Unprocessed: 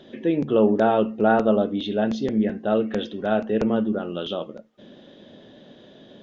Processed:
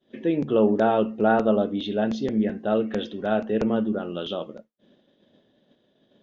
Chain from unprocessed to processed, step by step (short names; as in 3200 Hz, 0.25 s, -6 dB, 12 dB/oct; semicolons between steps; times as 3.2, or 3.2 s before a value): expander -37 dBFS; gain -1.5 dB